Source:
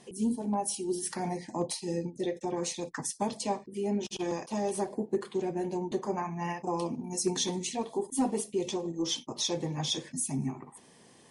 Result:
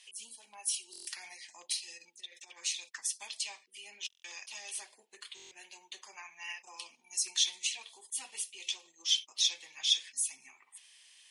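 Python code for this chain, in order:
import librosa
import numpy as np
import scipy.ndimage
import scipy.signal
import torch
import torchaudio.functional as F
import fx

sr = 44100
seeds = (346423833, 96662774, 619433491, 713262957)

y = fx.over_compress(x, sr, threshold_db=-35.0, ratio=-0.5, at=(1.97, 2.56), fade=0.02)
y = fx.highpass_res(y, sr, hz=2700.0, q=2.3)
y = fx.buffer_glitch(y, sr, at_s=(0.91, 4.08, 5.35), block=1024, repeats=6)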